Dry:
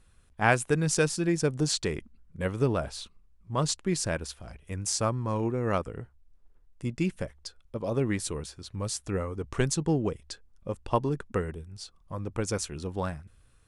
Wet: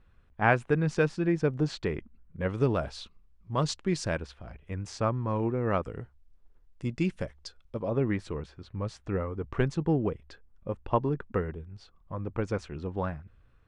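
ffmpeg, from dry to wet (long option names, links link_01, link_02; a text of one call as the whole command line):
ffmpeg -i in.wav -af "asetnsamples=nb_out_samples=441:pad=0,asendcmd='2.49 lowpass f 4800;4.22 lowpass f 2700;5.83 lowpass f 5700;7.8 lowpass f 2300',lowpass=2400" out.wav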